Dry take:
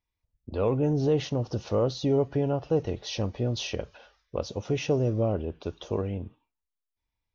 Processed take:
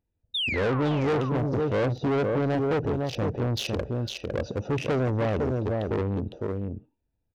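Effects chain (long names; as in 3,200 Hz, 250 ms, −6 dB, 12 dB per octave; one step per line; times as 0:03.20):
adaptive Wiener filter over 41 samples
0:00.34–0:01.14: sound drawn into the spectrogram fall 370–3,800 Hz −39 dBFS
0:03.54–0:04.68: high-shelf EQ 3,100 Hz +8.5 dB
on a send: single-tap delay 506 ms −7.5 dB
on the sum: soft clipping −30.5 dBFS, distortion −7 dB
low-shelf EQ 65 Hz −10.5 dB
in parallel at +2 dB: brickwall limiter −38 dBFS, peak gain reduction 10.5 dB
on the sum: level +6 dB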